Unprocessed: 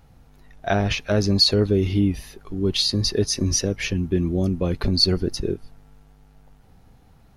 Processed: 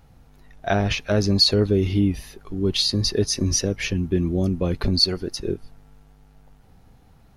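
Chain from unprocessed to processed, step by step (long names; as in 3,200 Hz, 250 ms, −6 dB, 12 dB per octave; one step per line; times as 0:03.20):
0:04.99–0:05.46: low-shelf EQ 320 Hz −9 dB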